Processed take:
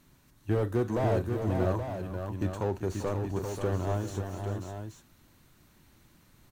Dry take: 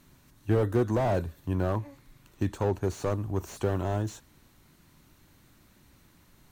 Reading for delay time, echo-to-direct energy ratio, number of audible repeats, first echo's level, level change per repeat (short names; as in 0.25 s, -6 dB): 43 ms, -2.5 dB, 4, -16.0 dB, no steady repeat